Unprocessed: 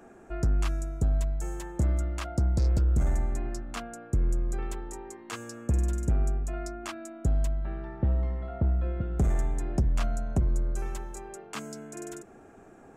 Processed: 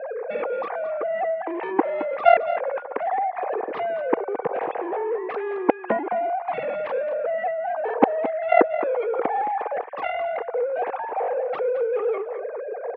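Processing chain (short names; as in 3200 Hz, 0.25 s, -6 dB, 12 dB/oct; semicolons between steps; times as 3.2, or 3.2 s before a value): sine-wave speech; in parallel at +0.5 dB: compressor, threshold -33 dBFS, peak gain reduction 18.5 dB; 2.61–3.37 on the sum: expander -26 dBFS; added harmonics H 3 -17 dB, 7 -15 dB, 8 -40 dB, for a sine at -5.5 dBFS; speaker cabinet 290–2200 Hz, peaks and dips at 480 Hz +8 dB, 770 Hz +8 dB, 1400 Hz -6 dB; on a send: echo 0.218 s -11.5 dB; on the sum: gain +2.5 dB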